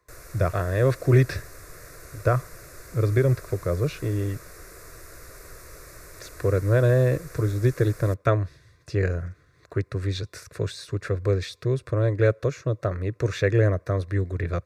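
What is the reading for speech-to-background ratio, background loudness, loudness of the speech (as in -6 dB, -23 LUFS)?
19.5 dB, -44.5 LUFS, -25.0 LUFS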